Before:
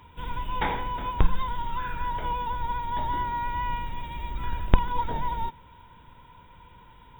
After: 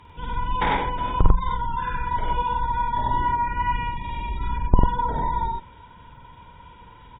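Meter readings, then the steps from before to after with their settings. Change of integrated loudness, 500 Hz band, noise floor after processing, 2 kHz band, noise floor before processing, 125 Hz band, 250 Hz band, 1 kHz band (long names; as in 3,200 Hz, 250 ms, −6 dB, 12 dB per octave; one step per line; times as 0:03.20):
+5.5 dB, +4.5 dB, −48 dBFS, +4.5 dB, −52 dBFS, +5.5 dB, +5.0 dB, +5.5 dB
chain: gate on every frequency bin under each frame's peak −30 dB strong
loudspeakers that aren't time-aligned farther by 18 metres −3 dB, 33 metres −1 dB
harmonic generator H 2 −18 dB, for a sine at −3.5 dBFS
level +2 dB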